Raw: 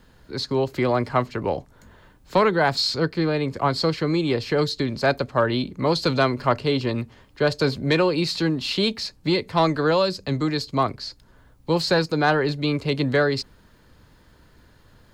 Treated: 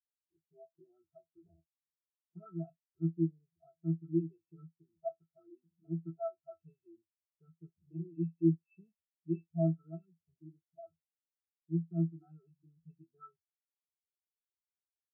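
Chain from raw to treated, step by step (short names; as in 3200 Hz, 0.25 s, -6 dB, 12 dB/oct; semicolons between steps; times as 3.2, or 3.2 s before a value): octave resonator E, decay 0.24 s; spectral expander 2.5:1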